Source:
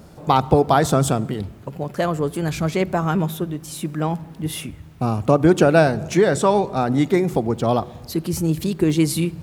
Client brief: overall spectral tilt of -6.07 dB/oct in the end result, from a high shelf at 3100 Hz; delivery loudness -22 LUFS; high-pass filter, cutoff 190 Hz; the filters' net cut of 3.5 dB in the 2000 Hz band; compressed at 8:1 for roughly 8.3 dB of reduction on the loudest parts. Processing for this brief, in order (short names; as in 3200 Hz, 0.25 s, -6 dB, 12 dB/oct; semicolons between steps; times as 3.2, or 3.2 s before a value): HPF 190 Hz; bell 2000 Hz -3.5 dB; high shelf 3100 Hz -5 dB; compressor 8:1, threshold -19 dBFS; gain +4.5 dB